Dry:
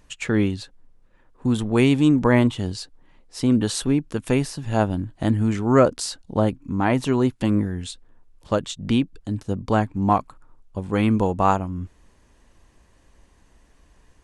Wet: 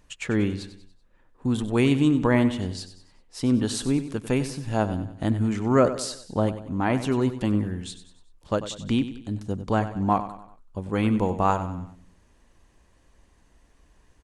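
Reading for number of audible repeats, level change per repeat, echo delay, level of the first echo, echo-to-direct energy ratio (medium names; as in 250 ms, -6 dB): 4, -7.0 dB, 95 ms, -12.5 dB, -11.5 dB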